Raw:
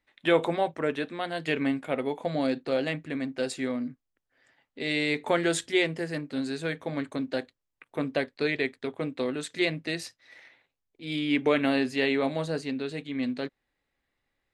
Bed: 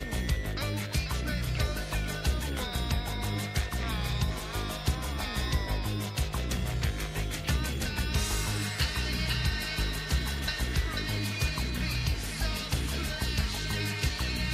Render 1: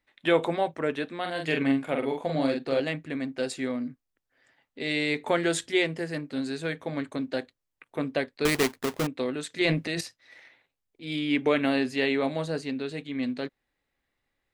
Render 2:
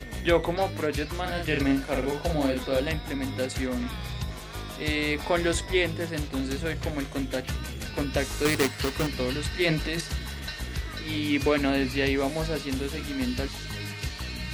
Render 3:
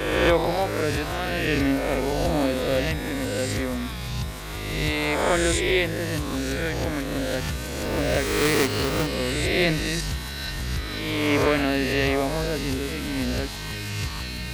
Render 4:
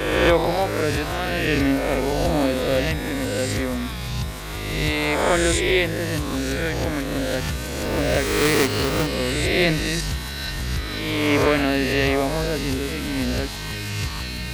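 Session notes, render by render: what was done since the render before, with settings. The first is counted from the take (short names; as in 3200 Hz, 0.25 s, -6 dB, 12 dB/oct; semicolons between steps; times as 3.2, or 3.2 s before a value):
1.2–2.8 doubler 44 ms -4 dB; 8.45–9.07 half-waves squared off; 9.61–10.01 transient shaper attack -1 dB, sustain +10 dB
add bed -3.5 dB
spectral swells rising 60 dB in 1.55 s
gain +2.5 dB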